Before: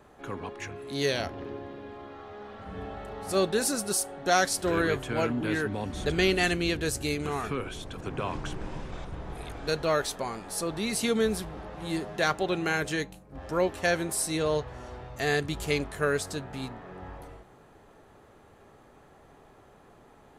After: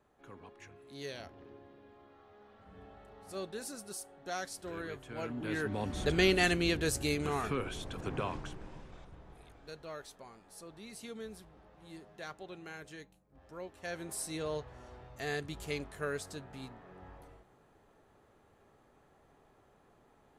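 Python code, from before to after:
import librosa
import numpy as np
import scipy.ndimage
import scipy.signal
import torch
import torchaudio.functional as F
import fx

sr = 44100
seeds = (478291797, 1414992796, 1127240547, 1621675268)

y = fx.gain(x, sr, db=fx.line((5.01, -15.5), (5.81, -2.5), (8.17, -2.5), (8.59, -11.0), (9.7, -19.0), (13.72, -19.0), (14.13, -10.0)))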